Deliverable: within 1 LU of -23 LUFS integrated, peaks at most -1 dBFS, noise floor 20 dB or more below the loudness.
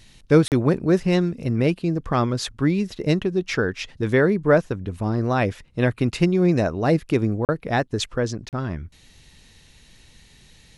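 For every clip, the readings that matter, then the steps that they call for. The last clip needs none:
dropouts 3; longest dropout 38 ms; loudness -22.0 LUFS; peak level -3.5 dBFS; loudness target -23.0 LUFS
-> interpolate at 0.48/7.45/8.49 s, 38 ms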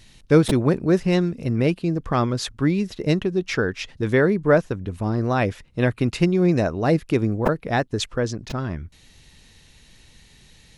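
dropouts 0; loudness -22.0 LUFS; peak level -3.5 dBFS; loudness target -23.0 LUFS
-> trim -1 dB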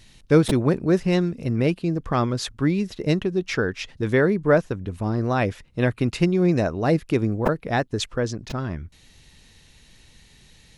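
loudness -23.0 LUFS; peak level -4.5 dBFS; noise floor -54 dBFS

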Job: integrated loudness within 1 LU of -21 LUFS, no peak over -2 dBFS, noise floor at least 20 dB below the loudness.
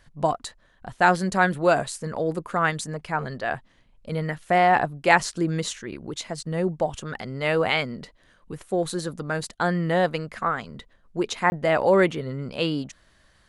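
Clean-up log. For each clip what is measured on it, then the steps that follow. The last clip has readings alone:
dropouts 1; longest dropout 20 ms; loudness -24.5 LUFS; peak level -2.5 dBFS; loudness target -21.0 LUFS
-> interpolate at 11.50 s, 20 ms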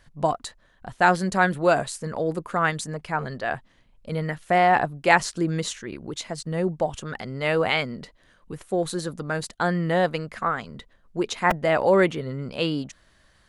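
dropouts 0; loudness -24.5 LUFS; peak level -2.5 dBFS; loudness target -21.0 LUFS
-> trim +3.5 dB; peak limiter -2 dBFS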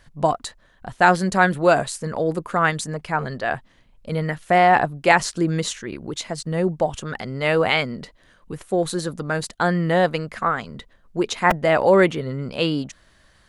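loudness -21.0 LUFS; peak level -2.0 dBFS; noise floor -57 dBFS

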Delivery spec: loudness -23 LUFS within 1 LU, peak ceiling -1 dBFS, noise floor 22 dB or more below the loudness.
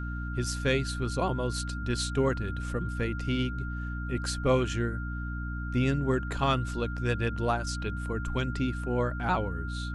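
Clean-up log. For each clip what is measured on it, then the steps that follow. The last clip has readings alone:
hum 60 Hz; highest harmonic 300 Hz; hum level -32 dBFS; steady tone 1.4 kHz; tone level -40 dBFS; loudness -30.5 LUFS; peak level -13.5 dBFS; loudness target -23.0 LUFS
-> hum notches 60/120/180/240/300 Hz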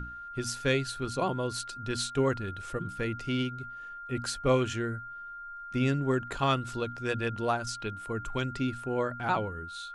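hum not found; steady tone 1.4 kHz; tone level -40 dBFS
-> band-stop 1.4 kHz, Q 30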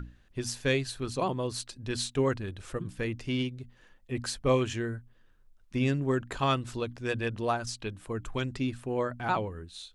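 steady tone not found; loudness -32.0 LUFS; peak level -13.5 dBFS; loudness target -23.0 LUFS
-> trim +9 dB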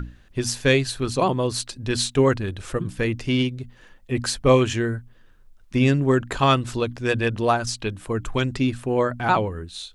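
loudness -23.0 LUFS; peak level -4.5 dBFS; noise floor -52 dBFS

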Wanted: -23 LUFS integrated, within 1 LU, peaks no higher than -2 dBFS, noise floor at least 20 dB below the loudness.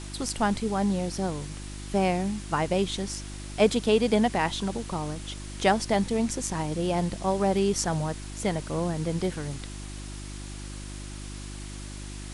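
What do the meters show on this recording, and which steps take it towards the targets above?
hum 50 Hz; highest harmonic 350 Hz; hum level -37 dBFS; noise floor -39 dBFS; noise floor target -48 dBFS; loudness -27.5 LUFS; peak level -7.5 dBFS; loudness target -23.0 LUFS
-> de-hum 50 Hz, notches 7; noise reduction 9 dB, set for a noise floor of -39 dBFS; trim +4.5 dB

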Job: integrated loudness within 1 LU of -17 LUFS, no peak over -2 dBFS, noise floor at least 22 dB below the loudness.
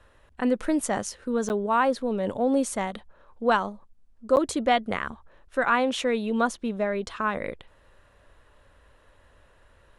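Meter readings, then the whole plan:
dropouts 2; longest dropout 9.5 ms; loudness -26.5 LUFS; peak level -9.0 dBFS; loudness target -17.0 LUFS
-> interpolate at 1.49/4.36 s, 9.5 ms; trim +9.5 dB; peak limiter -2 dBFS

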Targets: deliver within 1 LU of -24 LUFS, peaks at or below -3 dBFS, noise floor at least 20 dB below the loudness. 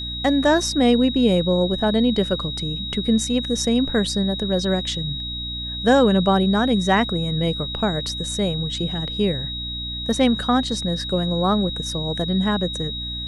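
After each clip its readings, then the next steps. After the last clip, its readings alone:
hum 60 Hz; highest harmonic 300 Hz; hum level -31 dBFS; steady tone 3.8 kHz; tone level -28 dBFS; loudness -21.0 LUFS; peak level -5.0 dBFS; loudness target -24.0 LUFS
-> de-hum 60 Hz, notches 5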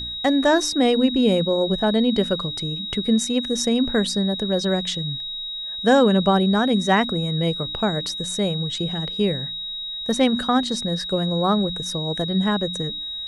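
hum not found; steady tone 3.8 kHz; tone level -28 dBFS
-> band-stop 3.8 kHz, Q 30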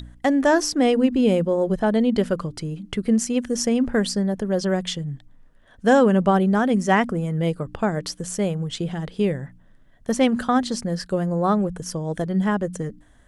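steady tone not found; loudness -22.0 LUFS; peak level -5.5 dBFS; loudness target -24.0 LUFS
-> trim -2 dB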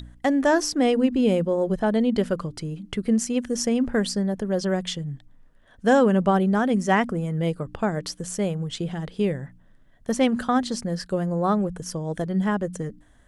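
loudness -24.0 LUFS; peak level -7.5 dBFS; noise floor -55 dBFS

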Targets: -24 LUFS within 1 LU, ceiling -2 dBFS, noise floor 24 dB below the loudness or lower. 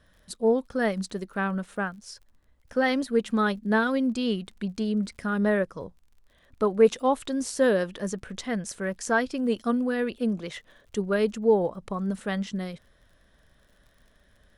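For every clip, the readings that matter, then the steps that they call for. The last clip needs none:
tick rate 39 per s; loudness -27.0 LUFS; peak level -8.0 dBFS; loudness target -24.0 LUFS
-> de-click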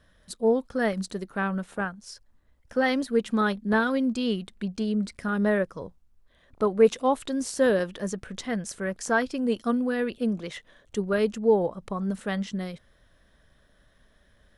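tick rate 0.069 per s; loudness -27.0 LUFS; peak level -8.0 dBFS; loudness target -24.0 LUFS
-> trim +3 dB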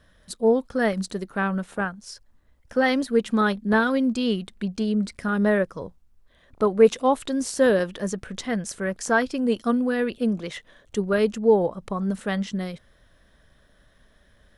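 loudness -24.0 LUFS; peak level -5.0 dBFS; noise floor -60 dBFS

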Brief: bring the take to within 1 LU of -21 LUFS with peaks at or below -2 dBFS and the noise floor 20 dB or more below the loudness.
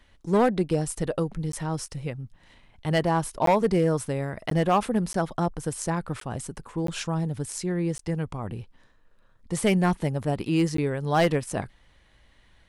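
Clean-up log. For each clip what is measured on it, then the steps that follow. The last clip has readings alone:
clipped samples 0.5%; clipping level -14.5 dBFS; dropouts 8; longest dropout 13 ms; loudness -26.5 LUFS; peak level -14.5 dBFS; loudness target -21.0 LUFS
-> clip repair -14.5 dBFS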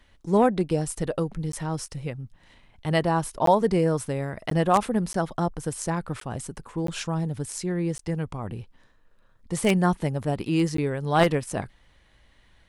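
clipped samples 0.0%; dropouts 8; longest dropout 13 ms
-> interpolate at 1.52/3.46/4.50/5.13/6.20/6.87/7.98/10.77 s, 13 ms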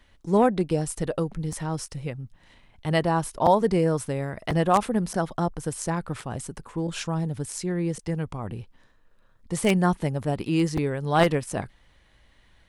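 dropouts 0; loudness -26.0 LUFS; peak level -5.5 dBFS; loudness target -21.0 LUFS
-> trim +5 dB; peak limiter -2 dBFS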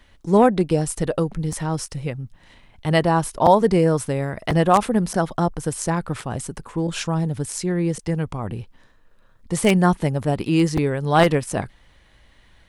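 loudness -21.0 LUFS; peak level -2.0 dBFS; noise floor -55 dBFS

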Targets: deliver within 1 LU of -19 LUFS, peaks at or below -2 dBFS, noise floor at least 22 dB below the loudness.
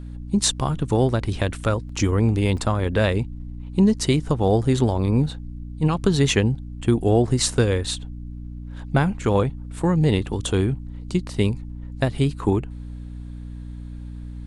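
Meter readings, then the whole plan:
dropouts 2; longest dropout 3.9 ms; hum 60 Hz; highest harmonic 300 Hz; hum level -33 dBFS; loudness -22.0 LUFS; peak level -4.0 dBFS; loudness target -19.0 LUFS
-> interpolate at 1.89/2.57 s, 3.9 ms; de-hum 60 Hz, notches 5; trim +3 dB; peak limiter -2 dBFS

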